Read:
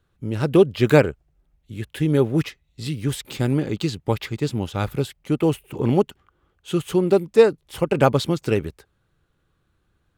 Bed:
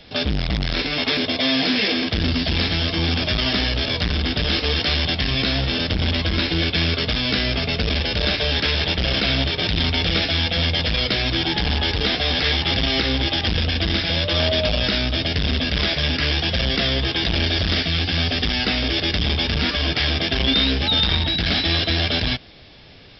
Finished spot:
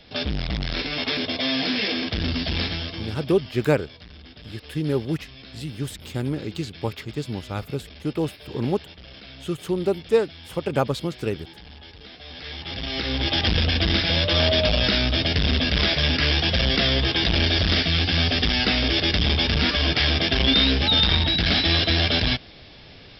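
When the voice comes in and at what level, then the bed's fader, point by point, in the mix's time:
2.75 s, −5.5 dB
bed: 0:02.63 −4.5 dB
0:03.51 −23 dB
0:12.10 −23 dB
0:13.39 0 dB

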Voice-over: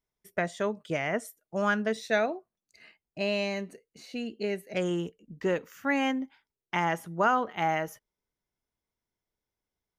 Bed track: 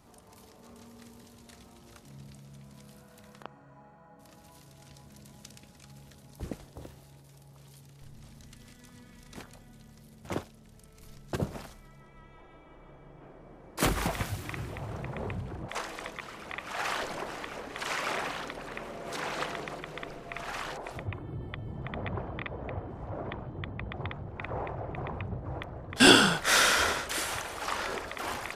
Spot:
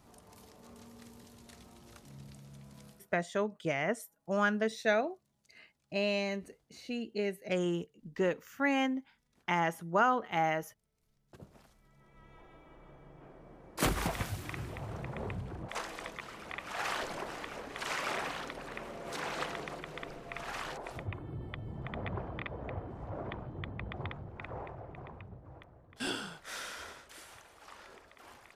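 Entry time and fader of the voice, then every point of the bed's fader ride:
2.75 s, −2.5 dB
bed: 0:02.88 −2 dB
0:03.21 −26 dB
0:11.17 −26 dB
0:12.32 −3 dB
0:24.02 −3 dB
0:26.13 −19.5 dB

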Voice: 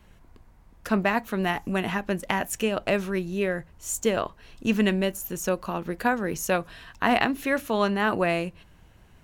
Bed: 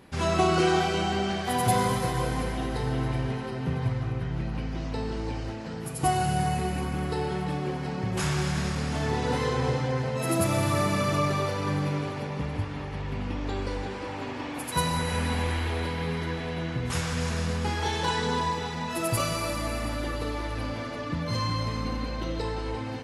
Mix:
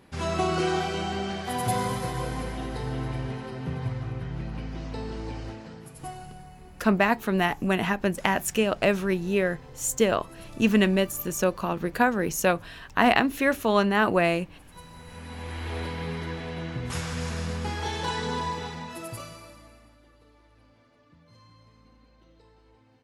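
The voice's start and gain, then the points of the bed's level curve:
5.95 s, +2.0 dB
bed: 0:05.51 −3 dB
0:06.47 −21.5 dB
0:14.87 −21.5 dB
0:15.76 −2.5 dB
0:18.67 −2.5 dB
0:19.99 −27 dB

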